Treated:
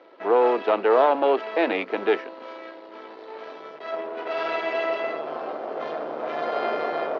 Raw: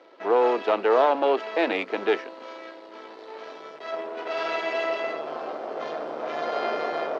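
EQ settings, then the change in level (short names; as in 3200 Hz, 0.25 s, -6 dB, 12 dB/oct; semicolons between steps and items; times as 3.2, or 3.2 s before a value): air absorption 150 m; +2.0 dB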